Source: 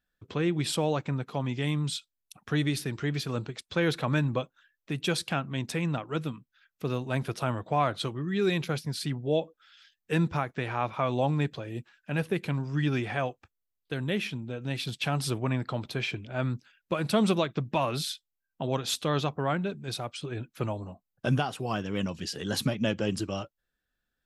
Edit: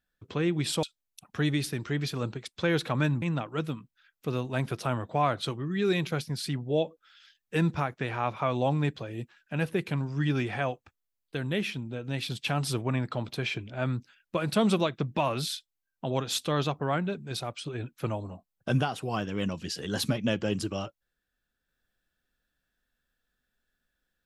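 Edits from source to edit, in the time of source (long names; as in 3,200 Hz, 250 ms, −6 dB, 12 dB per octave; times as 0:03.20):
0:00.83–0:01.96: remove
0:04.35–0:05.79: remove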